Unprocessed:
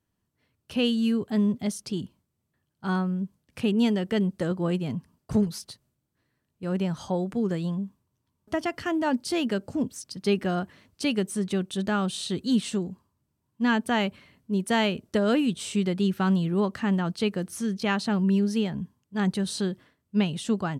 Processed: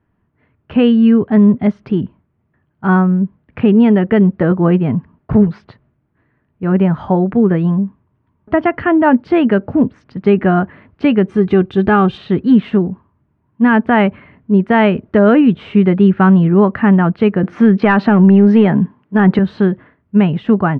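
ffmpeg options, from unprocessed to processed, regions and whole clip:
-filter_complex "[0:a]asettb=1/sr,asplit=3[s0][s1][s2];[s0]atrim=end=11.294[s3];[s1]atrim=start=11.29:end=12.18,asetpts=PTS-STARTPTS,afade=t=in:d=0.004:c=qsin,afade=t=out:st=0.886:d=0.004:c=qsin,bass=f=250:g=6,treble=f=4000:g=9,bandreject=f=1900:w=27,aecho=1:1:2.5:0.46,atrim=end_sample=39249[s4];[s2]atrim=start=12.176[s5];[s3][s4]acrossfade=d=0.004:c1=hsin:c2=qsin[s6];[s6][s5]acrossfade=d=0.004:c1=qsin:c2=hsin,asettb=1/sr,asplit=3[s7][s8][s9];[s7]atrim=end=17.434[s10];[s8]atrim=start=17.43:end=19.39,asetpts=PTS-STARTPTS,afade=t=in:d=0.004:c=qsin,afade=t=out:st=1.956:d=0.004:c=qsin,highpass=190,aeval=exprs='0.282*sin(PI/2*1.58*val(0)/0.282)':c=same[s11];[s9]atrim=start=19.386[s12];[s10][s11]acrossfade=d=0.004:c1=hsin:c2=qsin[s13];[s13][s12]acrossfade=d=0.004:c1=qsin:c2=hsin,lowpass=f=2100:w=0.5412,lowpass=f=2100:w=1.3066,bandreject=f=530:w=15,alimiter=level_in=6.31:limit=0.891:release=50:level=0:latency=1,volume=0.891"

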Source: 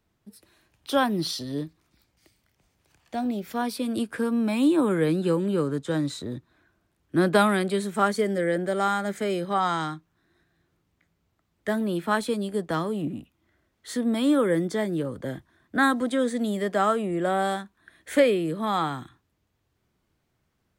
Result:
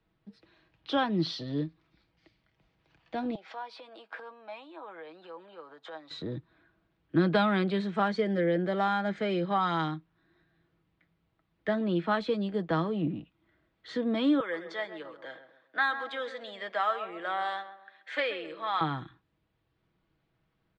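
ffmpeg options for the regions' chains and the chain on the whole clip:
-filter_complex "[0:a]asettb=1/sr,asplit=3[s0][s1][s2];[s0]atrim=end=3.354[s3];[s1]atrim=start=3.35:end=6.11,asetpts=PTS-STARTPTS,afade=t=in:d=0.004:c=qsin,afade=t=out:st=2.756:d=0.004:c=qsin,acompressor=threshold=0.0158:ratio=8:attack=3.2:release=140:knee=1:detection=peak,highpass=f=760:t=q:w=2.4,asoftclip=type=hard:threshold=0.0447[s4];[s2]atrim=start=6.106[s5];[s3][s4]acrossfade=d=0.004:c1=hsin:c2=qsin[s6];[s6][s5]acrossfade=d=0.004:c1=qsin:c2=hsin,asettb=1/sr,asplit=3[s7][s8][s9];[s7]atrim=end=14.404[s10];[s8]atrim=start=14.4:end=18.81,asetpts=PTS-STARTPTS,afade=t=in:d=0.004:c=qsin,afade=t=out:st=4.406:d=0.004:c=qsin,highpass=890,asplit=2[s11][s12];[s12]adelay=132,lowpass=f=1500:p=1,volume=0.316,asplit=2[s13][s14];[s14]adelay=132,lowpass=f=1500:p=1,volume=0.4,asplit=2[s15][s16];[s16]adelay=132,lowpass=f=1500:p=1,volume=0.4,asplit=2[s17][s18];[s18]adelay=132,lowpass=f=1500:p=1,volume=0.4[s19];[s11][s13][s15][s17][s19]amix=inputs=5:normalize=0,atrim=end_sample=194481[s20];[s9]atrim=start=18.806[s21];[s10][s20]acrossfade=d=0.004:c1=hsin:c2=qsin[s22];[s22][s21]acrossfade=d=0.004:c1=qsin:c2=hsin,lowpass=f=4100:w=0.5412,lowpass=f=4100:w=1.3066,aecho=1:1:6.2:0.41,acrossover=split=190|3000[s23][s24][s25];[s24]acompressor=threshold=0.0794:ratio=3[s26];[s23][s26][s25]amix=inputs=3:normalize=0,volume=0.794"

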